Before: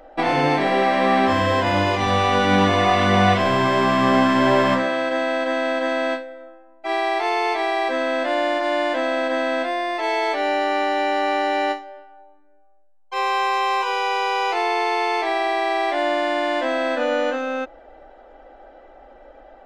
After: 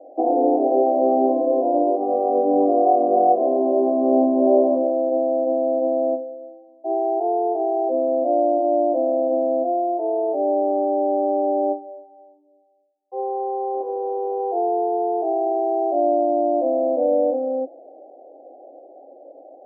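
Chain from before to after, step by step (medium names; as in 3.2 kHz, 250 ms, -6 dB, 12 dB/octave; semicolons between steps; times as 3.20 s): 13.73–14.39 s: spectral contrast reduction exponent 0.64; Chebyshev band-pass 270–740 Hz, order 4; trim +4 dB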